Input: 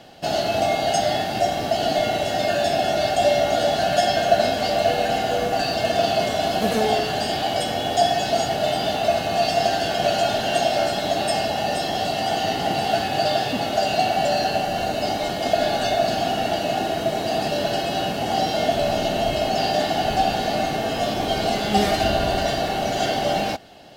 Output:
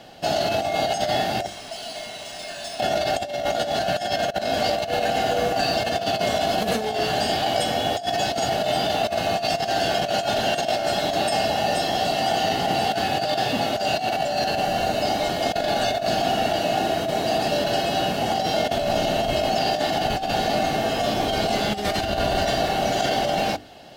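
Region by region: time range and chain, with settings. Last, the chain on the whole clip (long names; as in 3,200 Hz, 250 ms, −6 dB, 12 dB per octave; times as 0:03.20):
0:01.46–0:02.80: first-order pre-emphasis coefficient 0.9 + comb filter 4.6 ms, depth 32% + linearly interpolated sample-rate reduction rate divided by 3×
whole clip: mains-hum notches 50/100/150/200/250/300/350/400/450 Hz; compressor whose output falls as the input rises −22 dBFS, ratio −0.5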